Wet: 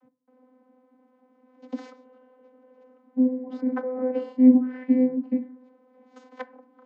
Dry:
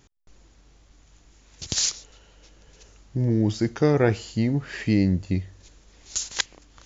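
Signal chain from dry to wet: LPF 1000 Hz 12 dB/oct; 3.25–4.39 negative-ratio compressor -30 dBFS, ratio -1; vocoder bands 32, saw 255 Hz; reverb RT60 0.60 s, pre-delay 3 ms, DRR 13 dB; gain +7.5 dB

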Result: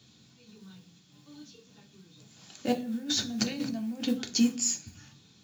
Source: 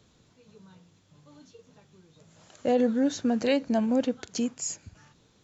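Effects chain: graphic EQ 125/500/1000/2000/4000 Hz +4/-7/-5/-7/+6 dB; 2.72–4.02 negative-ratio compressor -38 dBFS, ratio -1; modulation noise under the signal 25 dB; reverb RT60 0.40 s, pre-delay 3 ms, DRR 3.5 dB

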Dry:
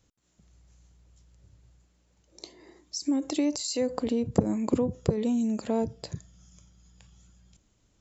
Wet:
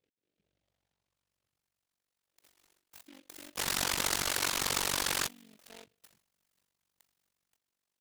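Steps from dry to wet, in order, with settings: painted sound noise, 3.57–5.28, 860–1800 Hz -19 dBFS; AM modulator 47 Hz, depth 95%; band-pass sweep 450 Hz -> 2400 Hz, 0.37–1.73; noise-modulated delay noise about 2600 Hz, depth 0.21 ms

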